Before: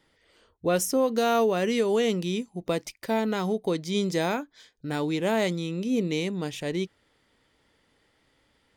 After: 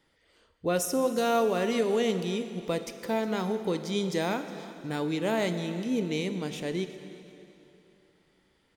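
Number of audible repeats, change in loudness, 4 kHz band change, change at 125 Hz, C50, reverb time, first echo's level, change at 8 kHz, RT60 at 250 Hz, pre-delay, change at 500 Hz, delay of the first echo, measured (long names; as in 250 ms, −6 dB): 2, −2.5 dB, −2.5 dB, −2.5 dB, 9.0 dB, 2.9 s, −19.0 dB, −2.5 dB, 2.9 s, 21 ms, −2.5 dB, 363 ms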